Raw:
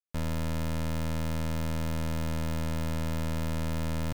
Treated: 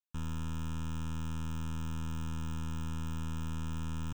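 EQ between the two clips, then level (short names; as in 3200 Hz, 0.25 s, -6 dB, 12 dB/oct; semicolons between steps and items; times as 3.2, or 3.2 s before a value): fixed phaser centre 3000 Hz, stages 8; -5.0 dB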